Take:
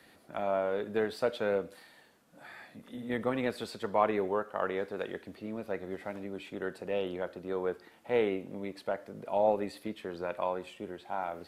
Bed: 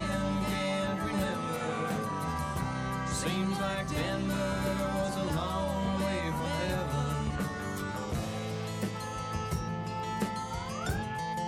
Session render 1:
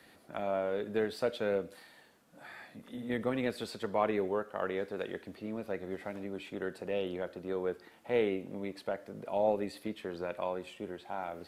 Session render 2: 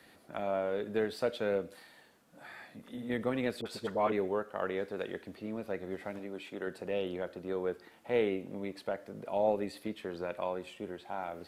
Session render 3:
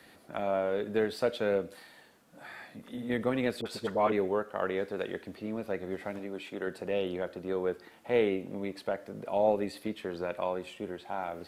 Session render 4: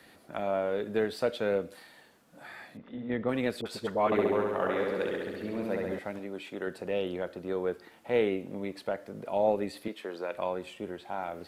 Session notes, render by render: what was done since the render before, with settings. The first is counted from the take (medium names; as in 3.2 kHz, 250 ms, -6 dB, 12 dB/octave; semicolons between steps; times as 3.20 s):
dynamic bell 1 kHz, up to -5 dB, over -42 dBFS, Q 1
3.61–4.12 s: phase dispersion highs, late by 48 ms, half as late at 810 Hz; 6.19–6.67 s: high-pass 230 Hz 6 dB/octave
trim +3 dB
2.77–3.29 s: distance through air 290 m; 4.05–5.99 s: flutter echo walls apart 11.6 m, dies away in 1.4 s; 9.88–10.34 s: high-pass 310 Hz